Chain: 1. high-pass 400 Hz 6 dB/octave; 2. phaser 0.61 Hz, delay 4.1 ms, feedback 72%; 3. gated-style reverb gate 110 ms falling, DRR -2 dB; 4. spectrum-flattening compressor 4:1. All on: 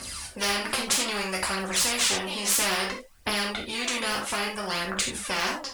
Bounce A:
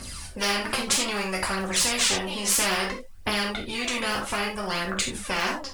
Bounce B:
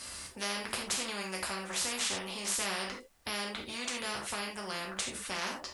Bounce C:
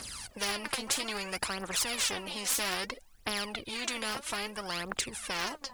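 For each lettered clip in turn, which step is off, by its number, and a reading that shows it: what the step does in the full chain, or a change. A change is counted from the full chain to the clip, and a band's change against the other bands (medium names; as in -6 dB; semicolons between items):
1, 125 Hz band +2.5 dB; 2, crest factor change +2.0 dB; 3, loudness change -7.0 LU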